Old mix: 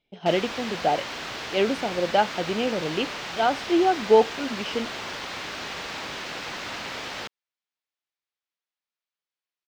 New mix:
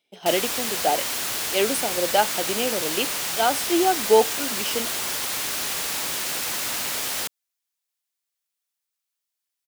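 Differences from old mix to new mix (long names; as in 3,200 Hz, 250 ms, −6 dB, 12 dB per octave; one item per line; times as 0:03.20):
speech: add high-pass filter 250 Hz 12 dB per octave
master: remove high-frequency loss of the air 200 metres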